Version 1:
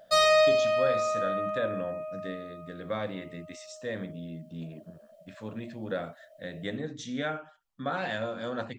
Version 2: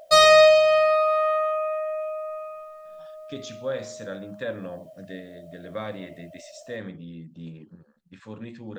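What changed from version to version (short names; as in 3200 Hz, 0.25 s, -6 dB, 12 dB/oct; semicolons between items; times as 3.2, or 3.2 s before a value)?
speech: entry +2.85 s; background +7.5 dB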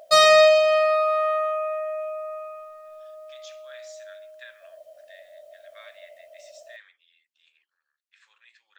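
speech: add ladder high-pass 1400 Hz, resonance 25%; master: add low shelf 180 Hz -9.5 dB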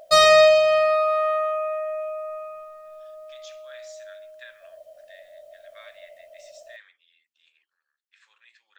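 master: add low shelf 180 Hz +9.5 dB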